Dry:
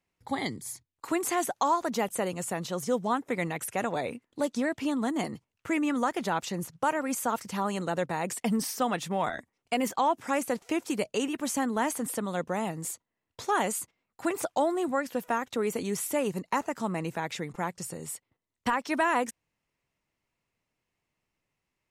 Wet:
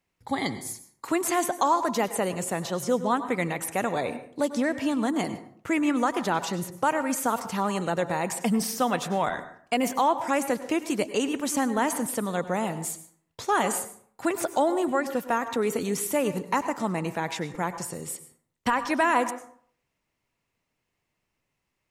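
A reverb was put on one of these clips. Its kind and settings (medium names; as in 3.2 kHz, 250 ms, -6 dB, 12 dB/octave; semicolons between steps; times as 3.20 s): plate-style reverb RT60 0.56 s, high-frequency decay 0.55×, pre-delay 85 ms, DRR 11.5 dB; trim +3 dB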